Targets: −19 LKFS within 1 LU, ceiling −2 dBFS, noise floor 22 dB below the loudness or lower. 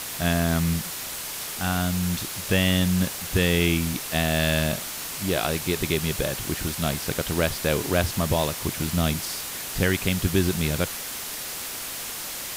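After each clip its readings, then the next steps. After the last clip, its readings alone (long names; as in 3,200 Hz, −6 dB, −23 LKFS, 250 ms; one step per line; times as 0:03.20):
background noise floor −34 dBFS; target noise floor −47 dBFS; integrated loudness −25.0 LKFS; sample peak −8.5 dBFS; target loudness −19.0 LKFS
→ broadband denoise 13 dB, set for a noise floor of −34 dBFS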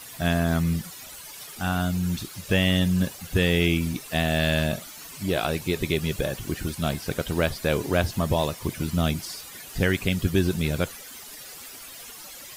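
background noise floor −42 dBFS; target noise floor −48 dBFS
→ broadband denoise 6 dB, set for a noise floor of −42 dBFS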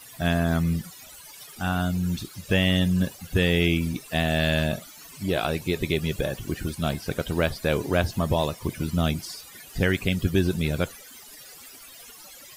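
background noise floor −46 dBFS; target noise floor −48 dBFS
→ broadband denoise 6 dB, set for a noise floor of −46 dBFS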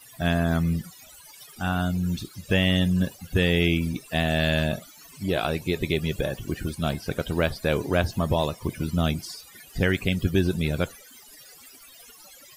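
background noise floor −50 dBFS; integrated loudness −25.5 LKFS; sample peak −9.5 dBFS; target loudness −19.0 LKFS
→ level +6.5 dB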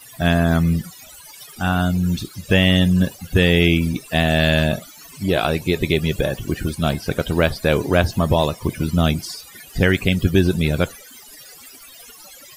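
integrated loudness −19.0 LKFS; sample peak −3.0 dBFS; background noise floor −43 dBFS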